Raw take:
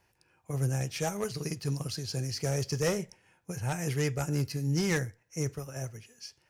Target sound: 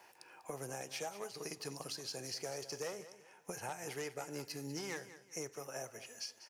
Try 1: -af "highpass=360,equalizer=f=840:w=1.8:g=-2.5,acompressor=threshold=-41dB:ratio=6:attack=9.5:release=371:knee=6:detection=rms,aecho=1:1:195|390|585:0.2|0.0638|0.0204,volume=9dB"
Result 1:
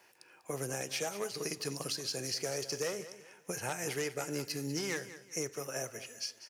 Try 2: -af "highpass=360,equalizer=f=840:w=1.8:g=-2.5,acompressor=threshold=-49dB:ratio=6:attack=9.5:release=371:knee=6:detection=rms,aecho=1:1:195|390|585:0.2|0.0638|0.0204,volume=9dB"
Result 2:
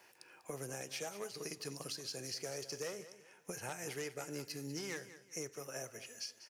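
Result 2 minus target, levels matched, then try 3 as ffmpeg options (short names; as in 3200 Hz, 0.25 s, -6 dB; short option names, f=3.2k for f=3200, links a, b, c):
1000 Hz band -4.0 dB
-af "highpass=360,equalizer=f=840:w=1.8:g=5,acompressor=threshold=-49dB:ratio=6:attack=9.5:release=371:knee=6:detection=rms,aecho=1:1:195|390|585:0.2|0.0638|0.0204,volume=9dB"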